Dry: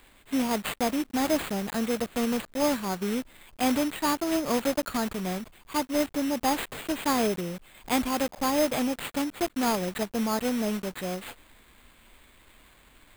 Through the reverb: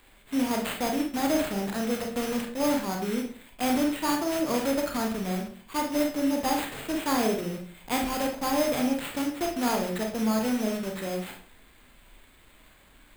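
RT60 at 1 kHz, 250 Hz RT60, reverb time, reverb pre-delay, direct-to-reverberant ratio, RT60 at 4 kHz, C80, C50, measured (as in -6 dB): 0.40 s, 0.60 s, 0.45 s, 28 ms, 1.5 dB, 0.35 s, 11.5 dB, 6.5 dB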